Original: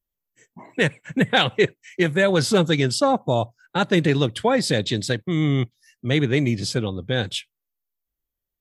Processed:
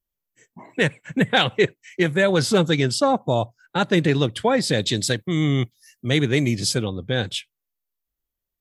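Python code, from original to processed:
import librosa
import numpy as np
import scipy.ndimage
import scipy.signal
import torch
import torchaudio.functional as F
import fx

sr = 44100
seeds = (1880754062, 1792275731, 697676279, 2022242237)

y = fx.high_shelf(x, sr, hz=6100.0, db=12.0, at=(4.78, 6.85))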